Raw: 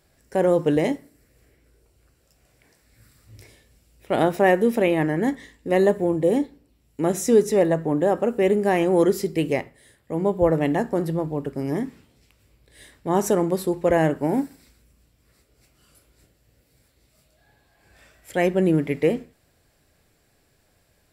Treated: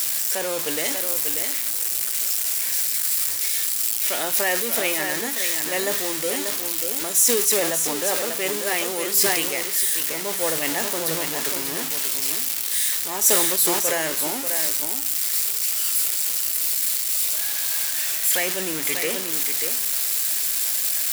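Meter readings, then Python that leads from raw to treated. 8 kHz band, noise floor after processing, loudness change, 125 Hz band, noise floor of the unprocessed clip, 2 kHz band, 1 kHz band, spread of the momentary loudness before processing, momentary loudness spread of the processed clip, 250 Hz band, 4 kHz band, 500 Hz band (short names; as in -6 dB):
+20.5 dB, -27 dBFS, +2.0 dB, -14.5 dB, -64 dBFS, +5.5 dB, -3.5 dB, 10 LU, 5 LU, -10.5 dB, +16.5 dB, -7.0 dB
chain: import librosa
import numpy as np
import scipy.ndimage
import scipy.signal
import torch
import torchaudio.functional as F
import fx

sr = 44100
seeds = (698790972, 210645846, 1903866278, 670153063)

p1 = x + 0.5 * 10.0 ** (-26.0 / 20.0) * np.sign(x)
p2 = np.diff(p1, prepend=0.0)
p3 = fx.rider(p2, sr, range_db=10, speed_s=0.5)
p4 = p2 + (p3 * 10.0 ** (0.0 / 20.0))
p5 = fx.notch(p4, sr, hz=790.0, q=22.0)
p6 = p5 + fx.echo_single(p5, sr, ms=589, db=-6.5, dry=0)
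p7 = fx.sustainer(p6, sr, db_per_s=30.0)
y = p7 * 10.0 ** (4.5 / 20.0)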